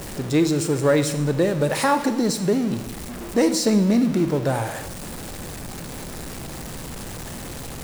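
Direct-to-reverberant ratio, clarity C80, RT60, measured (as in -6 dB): 9.5 dB, 13.0 dB, 1.0 s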